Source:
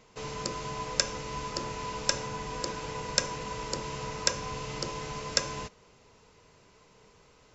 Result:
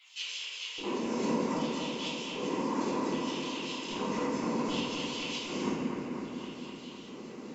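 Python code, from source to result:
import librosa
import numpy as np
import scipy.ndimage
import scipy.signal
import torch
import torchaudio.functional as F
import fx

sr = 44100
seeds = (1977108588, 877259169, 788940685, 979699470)

y = fx.over_compress(x, sr, threshold_db=-40.0, ratio=-0.5)
y = fx.filter_lfo_notch(y, sr, shape='saw_down', hz=4.8, low_hz=550.0, high_hz=6800.0, q=0.72)
y = fx.comb_fb(y, sr, f0_hz=110.0, decay_s=1.7, harmonics='all', damping=0.0, mix_pct=80)
y = fx.whisperise(y, sr, seeds[0])
y = fx.filter_lfo_highpass(y, sr, shape='square', hz=0.64, low_hz=240.0, high_hz=3000.0, q=5.6)
y = fx.echo_bbd(y, sr, ms=254, stages=4096, feedback_pct=74, wet_db=-5.5)
y = fx.room_shoebox(y, sr, seeds[1], volume_m3=390.0, walls='mixed', distance_m=4.1)
y = y * 10.0 ** (5.5 / 20.0)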